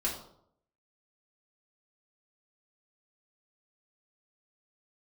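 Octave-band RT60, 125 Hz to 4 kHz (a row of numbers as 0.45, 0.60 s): 0.75, 0.70, 0.75, 0.65, 0.45, 0.45 s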